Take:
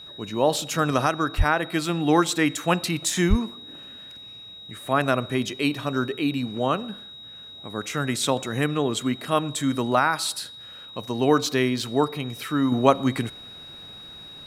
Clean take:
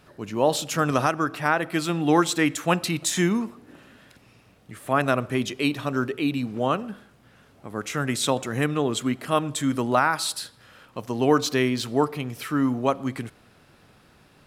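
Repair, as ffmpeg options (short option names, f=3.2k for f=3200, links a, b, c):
-filter_complex "[0:a]bandreject=f=3.8k:w=30,asplit=3[a][b][c];[a]afade=t=out:st=1.37:d=0.02[d];[b]highpass=f=140:w=0.5412,highpass=f=140:w=1.3066,afade=t=in:st=1.37:d=0.02,afade=t=out:st=1.49:d=0.02[e];[c]afade=t=in:st=1.49:d=0.02[f];[d][e][f]amix=inputs=3:normalize=0,asplit=3[g][h][i];[g]afade=t=out:st=3.29:d=0.02[j];[h]highpass=f=140:w=0.5412,highpass=f=140:w=1.3066,afade=t=in:st=3.29:d=0.02,afade=t=out:st=3.41:d=0.02[k];[i]afade=t=in:st=3.41:d=0.02[l];[j][k][l]amix=inputs=3:normalize=0,asetnsamples=n=441:p=0,asendcmd='12.72 volume volume -5.5dB',volume=0dB"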